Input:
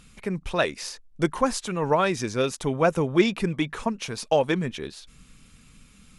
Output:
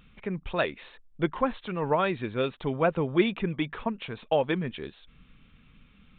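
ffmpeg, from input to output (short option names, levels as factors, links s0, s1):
-af "aresample=8000,aresample=44100,volume=0.668"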